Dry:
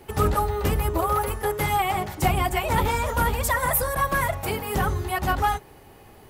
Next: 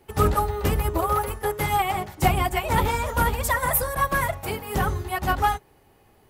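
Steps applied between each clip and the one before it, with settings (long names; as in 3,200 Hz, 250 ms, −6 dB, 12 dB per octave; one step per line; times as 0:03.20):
expander for the loud parts 1.5 to 1, over −40 dBFS
level +2.5 dB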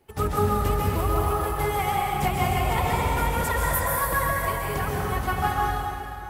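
dense smooth reverb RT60 3 s, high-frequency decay 0.8×, pre-delay 115 ms, DRR −3.5 dB
level −6 dB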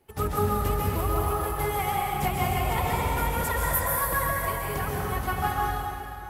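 parametric band 12,000 Hz +5.5 dB 0.38 octaves
level −2.5 dB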